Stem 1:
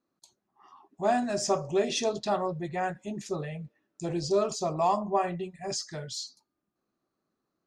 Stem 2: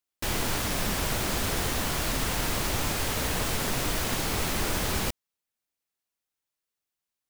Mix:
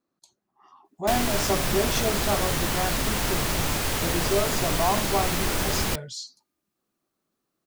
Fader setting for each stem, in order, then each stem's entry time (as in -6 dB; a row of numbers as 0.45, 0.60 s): +0.5, +2.5 dB; 0.00, 0.85 s